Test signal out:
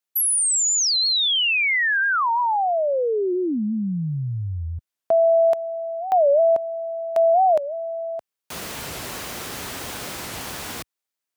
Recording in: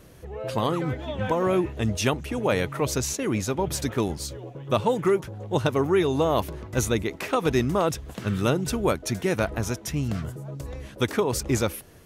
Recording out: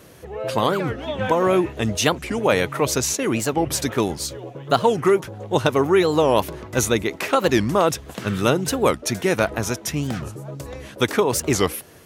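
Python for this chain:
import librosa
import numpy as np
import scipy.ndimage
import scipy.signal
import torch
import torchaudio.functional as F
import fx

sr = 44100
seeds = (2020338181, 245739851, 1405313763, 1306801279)

y = scipy.signal.sosfilt(scipy.signal.butter(2, 64.0, 'highpass', fs=sr, output='sos'), x)
y = fx.low_shelf(y, sr, hz=220.0, db=-7.0)
y = fx.record_warp(y, sr, rpm=45.0, depth_cents=250.0)
y = F.gain(torch.from_numpy(y), 6.5).numpy()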